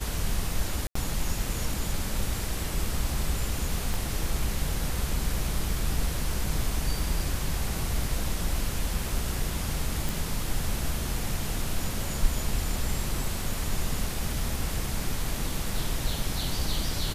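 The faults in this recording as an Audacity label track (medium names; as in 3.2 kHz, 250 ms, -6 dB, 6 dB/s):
0.870000	0.950000	dropout 84 ms
3.940000	3.940000	pop
10.090000	10.090000	pop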